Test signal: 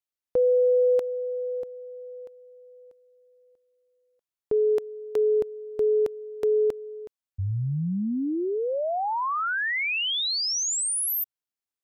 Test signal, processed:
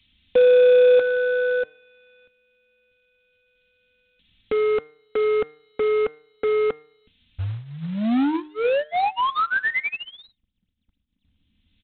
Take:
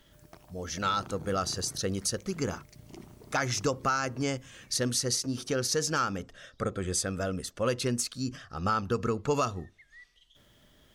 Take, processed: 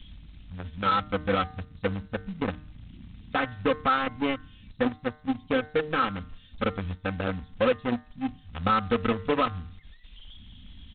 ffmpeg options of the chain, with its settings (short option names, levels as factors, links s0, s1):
-filter_complex "[0:a]aeval=exprs='val(0)+0.5*0.0112*sgn(val(0))':c=same,equalizer=f=110:t=o:w=0.79:g=5.5,aecho=1:1:3.9:0.86,acrossover=split=200|2800[s0][s1][s2];[s1]acrusher=bits=3:mix=0:aa=0.5[s3];[s2]acompressor=threshold=0.00891:ratio=10:attack=0.27:release=715:knee=1:detection=rms[s4];[s0][s3][s4]amix=inputs=3:normalize=0,bandreject=f=152:t=h:w=4,bandreject=f=304:t=h:w=4,bandreject=f=456:t=h:w=4,bandreject=f=608:t=h:w=4,bandreject=f=760:t=h:w=4,bandreject=f=912:t=h:w=4,bandreject=f=1064:t=h:w=4,bandreject=f=1216:t=h:w=4,bandreject=f=1368:t=h:w=4,bandreject=f=1520:t=h:w=4,bandreject=f=1672:t=h:w=4,bandreject=f=1824:t=h:w=4,bandreject=f=1976:t=h:w=4,bandreject=f=2128:t=h:w=4,aresample=8000,acrusher=bits=5:mode=log:mix=0:aa=0.000001,aresample=44100"